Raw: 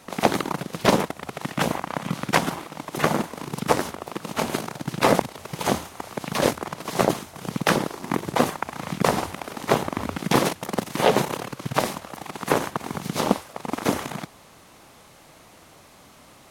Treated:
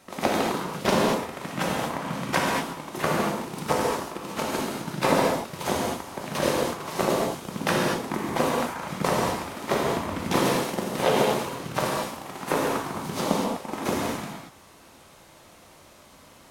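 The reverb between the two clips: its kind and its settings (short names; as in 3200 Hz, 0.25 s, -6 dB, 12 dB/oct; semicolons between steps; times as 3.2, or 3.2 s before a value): non-linear reverb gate 0.26 s flat, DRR -3 dB; gain -6 dB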